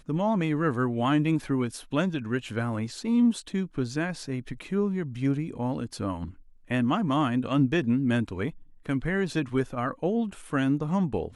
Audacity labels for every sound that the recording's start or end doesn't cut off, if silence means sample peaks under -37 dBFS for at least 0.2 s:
6.700000	8.500000	sound